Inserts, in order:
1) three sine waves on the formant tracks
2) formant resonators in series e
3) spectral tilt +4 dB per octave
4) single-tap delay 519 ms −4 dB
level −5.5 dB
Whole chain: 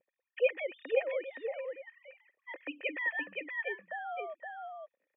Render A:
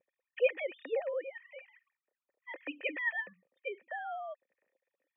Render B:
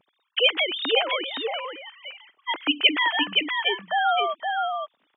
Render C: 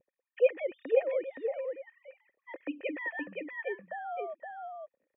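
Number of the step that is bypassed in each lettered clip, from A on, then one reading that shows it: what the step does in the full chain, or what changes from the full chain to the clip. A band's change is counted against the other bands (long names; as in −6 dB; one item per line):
4, change in crest factor +1.5 dB
2, 500 Hz band −11.5 dB
3, 2 kHz band −7.5 dB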